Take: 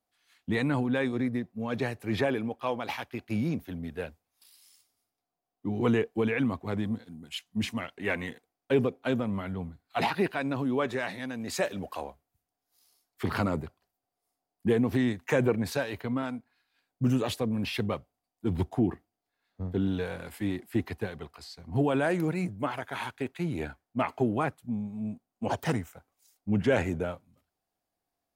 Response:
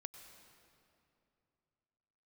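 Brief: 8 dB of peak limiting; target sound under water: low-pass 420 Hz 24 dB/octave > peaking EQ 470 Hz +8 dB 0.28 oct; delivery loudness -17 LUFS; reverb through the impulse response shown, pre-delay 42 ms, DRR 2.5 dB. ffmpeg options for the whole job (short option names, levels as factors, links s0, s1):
-filter_complex "[0:a]alimiter=limit=0.0944:level=0:latency=1,asplit=2[s0][s1];[1:a]atrim=start_sample=2205,adelay=42[s2];[s1][s2]afir=irnorm=-1:irlink=0,volume=1.26[s3];[s0][s3]amix=inputs=2:normalize=0,lowpass=f=420:w=0.5412,lowpass=f=420:w=1.3066,equalizer=f=470:t=o:w=0.28:g=8,volume=5.62"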